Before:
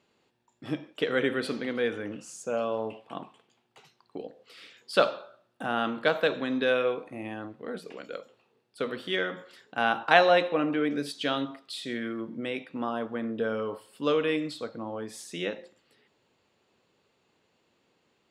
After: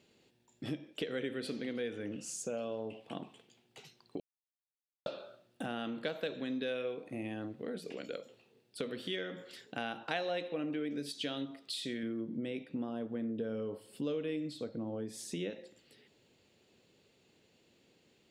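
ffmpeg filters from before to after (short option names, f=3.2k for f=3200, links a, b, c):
-filter_complex "[0:a]asettb=1/sr,asplit=3[a][b][c];[a]atrim=end=12.034[d];[b]atrim=start=12.03:end=15.5,asetpts=PTS-STARTPTS,afade=t=in:d=0.004:c=qsin,afade=t=out:st=3.466:d=0.004:c=qsin,tiltshelf=f=680:g=4[e];[c]atrim=start=15.496[f];[d][e]acrossfade=d=0.004:c1=hsin:c2=qsin[g];[g][f]acrossfade=d=0.004:c1=qsin:c2=hsin,asplit=3[h][i][j];[h]atrim=end=4.2,asetpts=PTS-STARTPTS,afade=t=out:st=4.196:d=0.004:c=hsin[k];[i]atrim=start=4.2:end=5.06,asetpts=PTS-STARTPTS,volume=0[l];[j]atrim=start=5.06,asetpts=PTS-STARTPTS,afade=t=in:d=0.004:c=hsin[m];[k][l][m]concat=n=3:v=0:a=1,equalizer=f=1.1k:t=o:w=1.3:g=-11.5,acompressor=threshold=-43dB:ratio=3,volume=4.5dB"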